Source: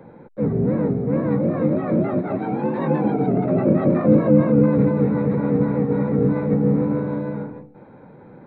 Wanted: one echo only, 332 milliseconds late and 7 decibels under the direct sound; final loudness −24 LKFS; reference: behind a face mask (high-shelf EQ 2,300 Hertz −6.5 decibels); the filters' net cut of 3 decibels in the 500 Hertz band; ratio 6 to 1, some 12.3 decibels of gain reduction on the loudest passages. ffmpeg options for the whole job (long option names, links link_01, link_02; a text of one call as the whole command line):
ffmpeg -i in.wav -af "equalizer=frequency=500:width_type=o:gain=-3,acompressor=threshold=-24dB:ratio=6,highshelf=frequency=2300:gain=-6.5,aecho=1:1:332:0.447,volume=3.5dB" out.wav